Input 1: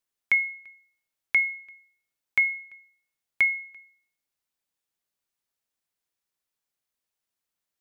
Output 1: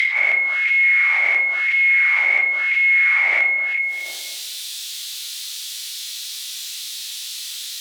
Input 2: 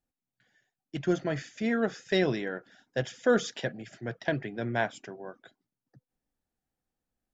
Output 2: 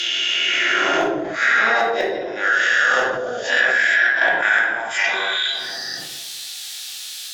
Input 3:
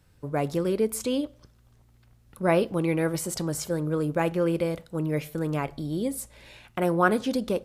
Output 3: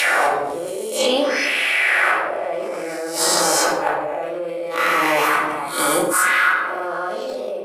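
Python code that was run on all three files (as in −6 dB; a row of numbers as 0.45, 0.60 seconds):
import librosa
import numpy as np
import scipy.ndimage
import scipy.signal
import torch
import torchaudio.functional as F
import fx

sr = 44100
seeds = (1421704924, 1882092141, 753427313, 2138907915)

y = fx.spec_swells(x, sr, rise_s=2.42)
y = scipy.signal.sosfilt(scipy.signal.butter(2, 43.0, 'highpass', fs=sr, output='sos'), y)
y = fx.peak_eq(y, sr, hz=380.0, db=7.5, octaves=0.32)
y = fx.auto_wah(y, sr, base_hz=630.0, top_hz=3700.0, q=2.8, full_db=-18.0, direction='down')
y = fx.echo_filtered(y, sr, ms=231, feedback_pct=36, hz=830.0, wet_db=-18.0)
y = fx.rider(y, sr, range_db=3, speed_s=2.0)
y = fx.gate_flip(y, sr, shuts_db=-23.0, range_db=-36)
y = scipy.signal.lfilter([1.0, -0.97], [1.0], y)
y = fx.room_shoebox(y, sr, seeds[0], volume_m3=390.0, walls='furnished', distance_m=2.4)
y = fx.env_flatten(y, sr, amount_pct=70)
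y = y * 10.0 ** (-20 / 20.0) / np.sqrt(np.mean(np.square(y)))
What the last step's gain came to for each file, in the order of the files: +23.0, +27.5, +28.0 decibels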